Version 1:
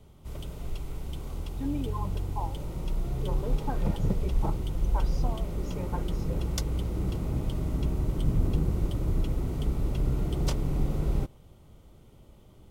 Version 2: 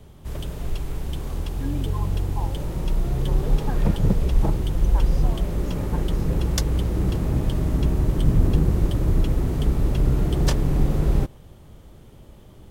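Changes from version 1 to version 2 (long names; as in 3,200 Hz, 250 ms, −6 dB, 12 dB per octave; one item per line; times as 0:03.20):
background +7.5 dB
master: remove Butterworth band-reject 1,700 Hz, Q 6.9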